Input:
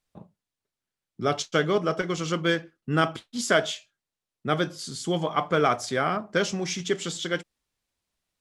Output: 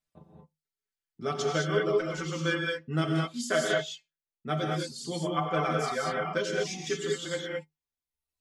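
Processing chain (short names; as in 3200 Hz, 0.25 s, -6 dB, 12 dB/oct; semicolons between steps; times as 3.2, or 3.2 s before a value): metallic resonator 76 Hz, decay 0.21 s, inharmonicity 0.008; reverb removal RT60 1.2 s; non-linear reverb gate 0.24 s rising, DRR -1 dB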